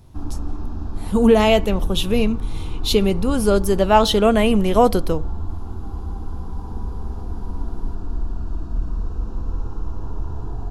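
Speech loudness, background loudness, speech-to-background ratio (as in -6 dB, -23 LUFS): -18.0 LUFS, -31.0 LUFS, 13.0 dB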